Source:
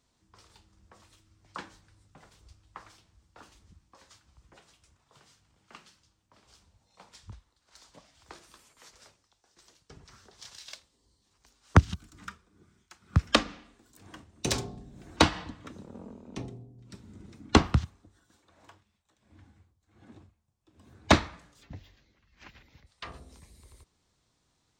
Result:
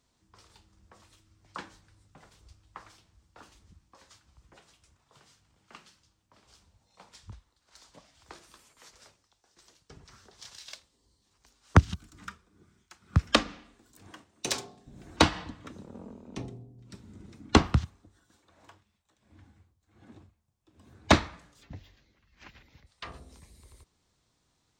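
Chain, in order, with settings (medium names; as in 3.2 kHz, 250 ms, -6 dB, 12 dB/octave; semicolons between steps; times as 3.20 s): 14.11–14.86 s: high-pass 300 Hz -> 950 Hz 6 dB/octave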